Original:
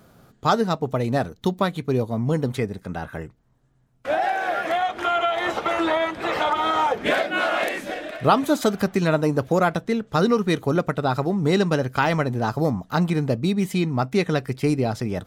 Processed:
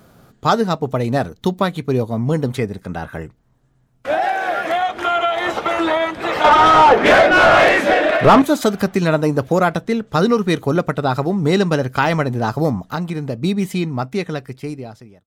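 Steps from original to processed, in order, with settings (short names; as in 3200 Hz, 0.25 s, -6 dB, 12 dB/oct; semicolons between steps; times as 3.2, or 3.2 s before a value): ending faded out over 1.92 s; 6.44–8.42 overdrive pedal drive 26 dB, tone 1200 Hz, clips at -4 dBFS; 12.88–13.42 compressor 3:1, threshold -26 dBFS, peak gain reduction 7.5 dB; gain +4 dB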